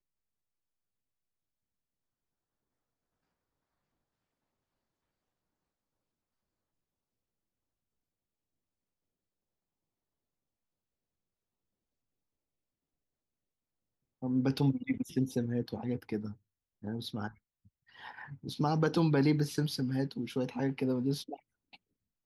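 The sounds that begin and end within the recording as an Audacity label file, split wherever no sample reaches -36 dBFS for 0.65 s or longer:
14.230000	17.280000	sound
18.060000	21.340000	sound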